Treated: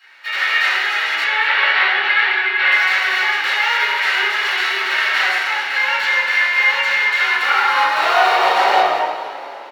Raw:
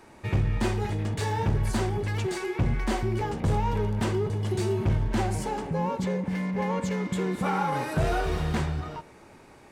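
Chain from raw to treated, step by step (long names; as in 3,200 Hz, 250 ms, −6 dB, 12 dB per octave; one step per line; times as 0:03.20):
spectral envelope flattened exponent 0.3
0:01.24–0:02.72: low-pass filter 3,800 Hz 24 dB per octave
automatic gain control gain up to 5.5 dB
brickwall limiter −12.5 dBFS, peak gain reduction 9 dB
high-pass filter sweep 1,700 Hz → 640 Hz, 0:07.11–0:08.98
echo with shifted repeats 229 ms, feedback 55%, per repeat +38 Hz, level −13 dB
convolution reverb RT60 1.2 s, pre-delay 3 ms, DRR −14 dB
level −13 dB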